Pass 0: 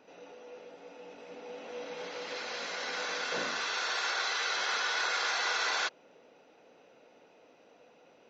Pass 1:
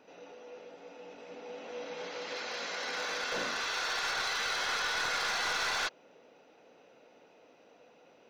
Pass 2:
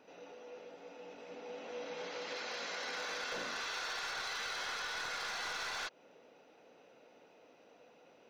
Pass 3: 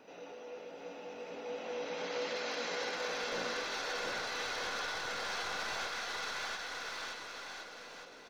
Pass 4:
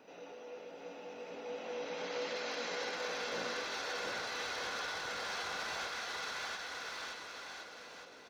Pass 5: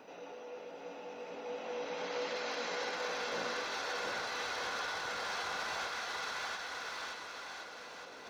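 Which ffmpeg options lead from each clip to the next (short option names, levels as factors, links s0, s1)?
-af "aeval=exprs='clip(val(0),-1,0.0299)':c=same"
-af "acompressor=threshold=0.0178:ratio=6,volume=0.794"
-filter_complex "[0:a]aecho=1:1:680|1258|1749|2167|2522:0.631|0.398|0.251|0.158|0.1,acrossover=split=760[s0][s1];[s1]alimiter=level_in=3.35:limit=0.0631:level=0:latency=1:release=113,volume=0.299[s2];[s0][s2]amix=inputs=2:normalize=0,volume=1.58"
-af "highpass=48,volume=0.841"
-af "equalizer=f=960:t=o:w=1.2:g=3.5,areverse,acompressor=mode=upward:threshold=0.00631:ratio=2.5,areverse"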